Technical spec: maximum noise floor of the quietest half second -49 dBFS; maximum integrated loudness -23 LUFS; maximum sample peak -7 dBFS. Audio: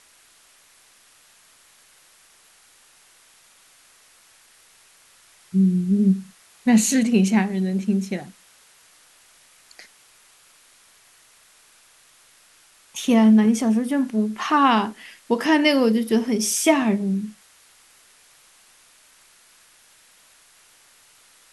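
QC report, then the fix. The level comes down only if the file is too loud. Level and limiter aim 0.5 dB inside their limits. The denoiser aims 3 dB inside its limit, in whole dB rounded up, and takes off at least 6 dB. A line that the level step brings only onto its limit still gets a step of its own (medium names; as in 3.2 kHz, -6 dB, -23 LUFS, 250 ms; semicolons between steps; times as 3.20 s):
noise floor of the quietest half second -55 dBFS: pass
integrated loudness -20.0 LUFS: fail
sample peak -4.0 dBFS: fail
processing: trim -3.5 dB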